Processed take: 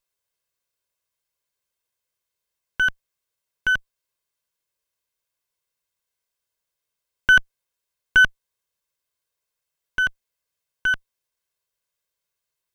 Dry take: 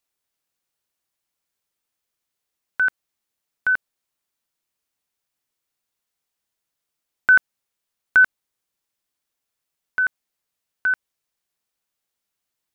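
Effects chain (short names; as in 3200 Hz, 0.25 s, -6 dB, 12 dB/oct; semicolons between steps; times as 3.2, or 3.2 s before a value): minimum comb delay 1.9 ms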